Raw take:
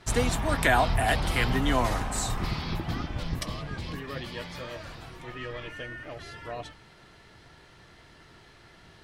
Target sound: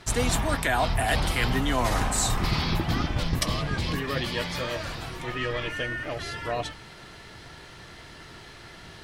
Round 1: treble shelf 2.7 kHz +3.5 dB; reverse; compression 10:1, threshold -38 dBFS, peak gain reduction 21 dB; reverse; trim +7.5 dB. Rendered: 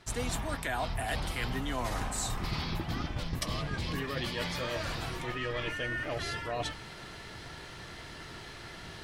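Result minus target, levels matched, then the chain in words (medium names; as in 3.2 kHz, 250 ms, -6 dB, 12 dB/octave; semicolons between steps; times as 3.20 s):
compression: peak gain reduction +9 dB
treble shelf 2.7 kHz +3.5 dB; reverse; compression 10:1, threshold -28 dBFS, peak gain reduction 12 dB; reverse; trim +7.5 dB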